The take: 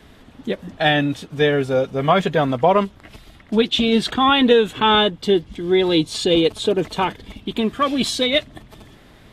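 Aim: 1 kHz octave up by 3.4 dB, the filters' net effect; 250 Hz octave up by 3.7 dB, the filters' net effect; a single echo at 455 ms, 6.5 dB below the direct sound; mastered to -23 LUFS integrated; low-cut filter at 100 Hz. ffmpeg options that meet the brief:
-af "highpass=100,equalizer=f=250:t=o:g=4.5,equalizer=f=1000:t=o:g=4,aecho=1:1:455:0.473,volume=0.447"

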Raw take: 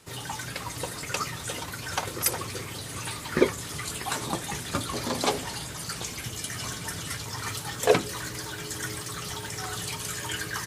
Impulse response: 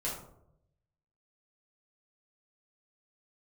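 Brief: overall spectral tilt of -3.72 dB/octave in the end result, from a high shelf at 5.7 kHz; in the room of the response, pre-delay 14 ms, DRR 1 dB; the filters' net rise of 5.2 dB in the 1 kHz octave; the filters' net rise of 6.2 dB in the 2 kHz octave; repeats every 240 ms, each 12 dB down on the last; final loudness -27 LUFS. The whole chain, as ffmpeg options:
-filter_complex "[0:a]equalizer=f=1000:t=o:g=5,equalizer=f=2000:t=o:g=7,highshelf=f=5700:g=-7.5,aecho=1:1:240|480|720:0.251|0.0628|0.0157,asplit=2[s0][s1];[1:a]atrim=start_sample=2205,adelay=14[s2];[s1][s2]afir=irnorm=-1:irlink=0,volume=0.596[s3];[s0][s3]amix=inputs=2:normalize=0,volume=0.891"

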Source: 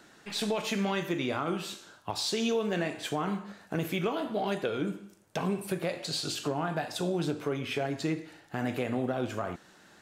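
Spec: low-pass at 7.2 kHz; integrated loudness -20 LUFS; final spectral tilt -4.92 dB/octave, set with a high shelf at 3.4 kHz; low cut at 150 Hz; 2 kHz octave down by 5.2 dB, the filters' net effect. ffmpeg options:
-af "highpass=150,lowpass=7200,equalizer=f=2000:t=o:g=-4.5,highshelf=f=3400:g=-7,volume=5.01"

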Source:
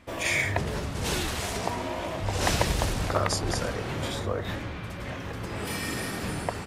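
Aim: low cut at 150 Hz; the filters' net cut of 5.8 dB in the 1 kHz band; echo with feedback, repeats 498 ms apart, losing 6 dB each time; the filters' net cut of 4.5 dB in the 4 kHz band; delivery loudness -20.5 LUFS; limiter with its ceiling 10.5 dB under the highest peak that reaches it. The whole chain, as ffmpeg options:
-af "highpass=150,equalizer=f=1000:t=o:g=-7.5,equalizer=f=4000:t=o:g=-5.5,alimiter=limit=0.0668:level=0:latency=1,aecho=1:1:498|996|1494|1992|2490|2988:0.501|0.251|0.125|0.0626|0.0313|0.0157,volume=4.47"

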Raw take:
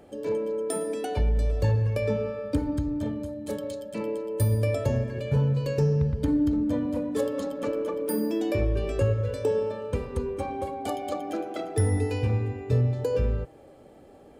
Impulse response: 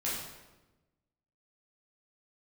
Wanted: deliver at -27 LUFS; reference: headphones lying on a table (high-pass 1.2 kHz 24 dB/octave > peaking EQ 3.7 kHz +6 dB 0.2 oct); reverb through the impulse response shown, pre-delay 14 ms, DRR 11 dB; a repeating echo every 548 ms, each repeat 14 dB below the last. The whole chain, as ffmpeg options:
-filter_complex "[0:a]aecho=1:1:548|1096:0.2|0.0399,asplit=2[s0][s1];[1:a]atrim=start_sample=2205,adelay=14[s2];[s1][s2]afir=irnorm=-1:irlink=0,volume=0.15[s3];[s0][s3]amix=inputs=2:normalize=0,highpass=f=1200:w=0.5412,highpass=f=1200:w=1.3066,equalizer=f=3700:t=o:w=0.2:g=6,volume=6.31"

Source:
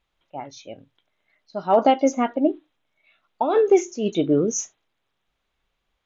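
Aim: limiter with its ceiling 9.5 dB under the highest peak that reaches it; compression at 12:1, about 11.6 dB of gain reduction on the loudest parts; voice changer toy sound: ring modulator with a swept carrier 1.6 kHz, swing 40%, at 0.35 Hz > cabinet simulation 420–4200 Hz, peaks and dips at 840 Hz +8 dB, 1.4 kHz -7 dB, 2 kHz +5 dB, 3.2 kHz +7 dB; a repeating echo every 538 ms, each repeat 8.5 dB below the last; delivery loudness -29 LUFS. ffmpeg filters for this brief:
-af "acompressor=threshold=0.0708:ratio=12,alimiter=limit=0.0668:level=0:latency=1,aecho=1:1:538|1076|1614|2152:0.376|0.143|0.0543|0.0206,aeval=exprs='val(0)*sin(2*PI*1600*n/s+1600*0.4/0.35*sin(2*PI*0.35*n/s))':c=same,highpass=420,equalizer=f=840:t=q:w=4:g=8,equalizer=f=1400:t=q:w=4:g=-7,equalizer=f=2000:t=q:w=4:g=5,equalizer=f=3200:t=q:w=4:g=7,lowpass=f=4200:w=0.5412,lowpass=f=4200:w=1.3066,volume=1.88"

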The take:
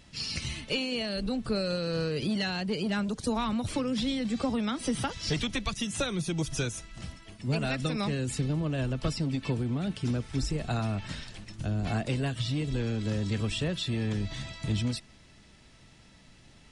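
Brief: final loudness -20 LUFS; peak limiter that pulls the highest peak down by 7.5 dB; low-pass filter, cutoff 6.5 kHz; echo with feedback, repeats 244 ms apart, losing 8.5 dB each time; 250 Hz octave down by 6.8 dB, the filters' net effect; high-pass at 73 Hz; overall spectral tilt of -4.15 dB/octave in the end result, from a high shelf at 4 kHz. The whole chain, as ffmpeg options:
-af "highpass=73,lowpass=6500,equalizer=f=250:t=o:g=-9,highshelf=f=4000:g=7,alimiter=level_in=1.19:limit=0.0631:level=0:latency=1,volume=0.841,aecho=1:1:244|488|732|976:0.376|0.143|0.0543|0.0206,volume=5.31"

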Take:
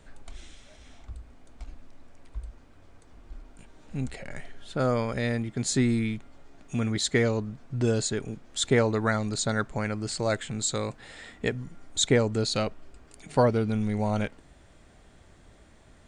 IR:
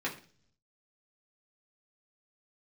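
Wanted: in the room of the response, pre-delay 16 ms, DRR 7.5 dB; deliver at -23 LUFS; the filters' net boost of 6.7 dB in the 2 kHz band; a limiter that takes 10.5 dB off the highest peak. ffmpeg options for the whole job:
-filter_complex "[0:a]equalizer=f=2000:t=o:g=8,alimiter=limit=0.133:level=0:latency=1,asplit=2[s0][s1];[1:a]atrim=start_sample=2205,adelay=16[s2];[s1][s2]afir=irnorm=-1:irlink=0,volume=0.211[s3];[s0][s3]amix=inputs=2:normalize=0,volume=2"

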